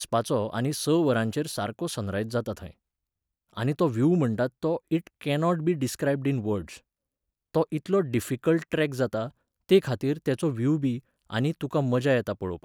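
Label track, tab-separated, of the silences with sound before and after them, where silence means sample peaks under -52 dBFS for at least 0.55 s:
2.730000	3.500000	silence
6.790000	7.550000	silence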